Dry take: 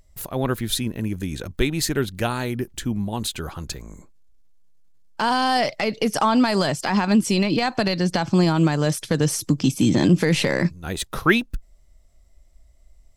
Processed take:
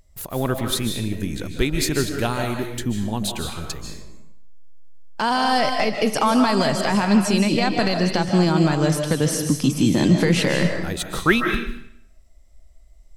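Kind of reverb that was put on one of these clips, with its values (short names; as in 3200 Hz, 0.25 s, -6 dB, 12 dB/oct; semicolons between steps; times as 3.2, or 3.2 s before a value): digital reverb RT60 0.71 s, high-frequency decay 0.95×, pre-delay 0.11 s, DRR 4 dB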